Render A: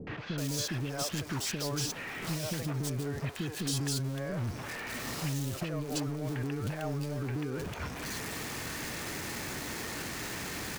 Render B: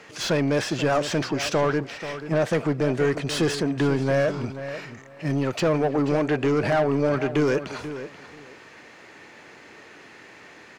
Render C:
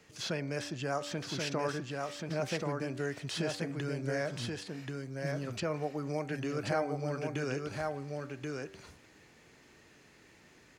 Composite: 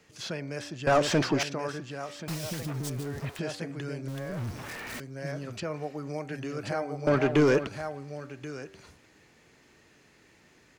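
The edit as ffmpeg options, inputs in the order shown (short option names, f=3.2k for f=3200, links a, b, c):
-filter_complex "[1:a]asplit=2[a][b];[0:a]asplit=2[c][d];[2:a]asplit=5[e][f][g][h][i];[e]atrim=end=0.872[j];[a]atrim=start=0.868:end=1.432[k];[f]atrim=start=1.428:end=2.282[l];[c]atrim=start=2.278:end=3.392[m];[g]atrim=start=3.388:end=4.082[n];[d]atrim=start=4.078:end=5.002[o];[h]atrim=start=4.998:end=7.072[p];[b]atrim=start=7.068:end=7.672[q];[i]atrim=start=7.668[r];[j][k]acrossfade=d=0.004:c1=hsin:c2=hsin[s];[s][l]acrossfade=d=0.004:c1=hsin:c2=hsin[t];[t][m]acrossfade=d=0.004:c1=hsin:c2=hsin[u];[u][n]acrossfade=d=0.004:c1=hsin:c2=hsin[v];[v][o]acrossfade=d=0.004:c1=hsin:c2=hsin[w];[w][p]acrossfade=d=0.004:c1=hsin:c2=hsin[x];[x][q]acrossfade=d=0.004:c1=hsin:c2=hsin[y];[y][r]acrossfade=d=0.004:c1=hsin:c2=hsin"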